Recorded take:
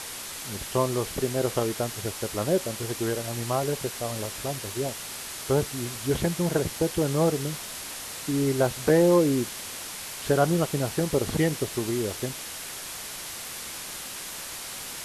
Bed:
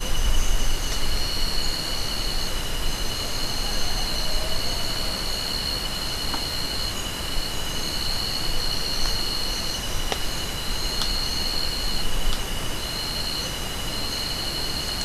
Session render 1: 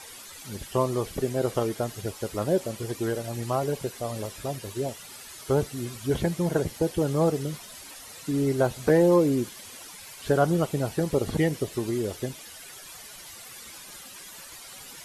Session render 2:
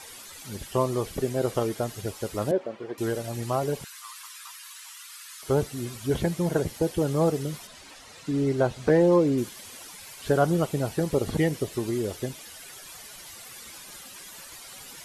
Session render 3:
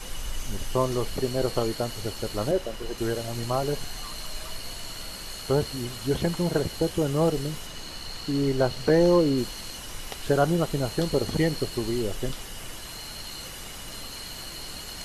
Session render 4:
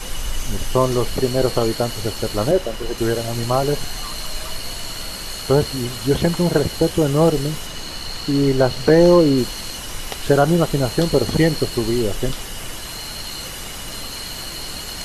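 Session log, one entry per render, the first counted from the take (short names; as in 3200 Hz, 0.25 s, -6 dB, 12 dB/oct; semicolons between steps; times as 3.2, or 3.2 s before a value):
denoiser 12 dB, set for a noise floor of -38 dBFS
2.51–2.98 BPF 290–2000 Hz; 3.84–5.43 steep high-pass 1000 Hz 72 dB/oct; 7.67–9.38 air absorption 62 m
add bed -12 dB
gain +8 dB; limiter -3 dBFS, peak gain reduction 2.5 dB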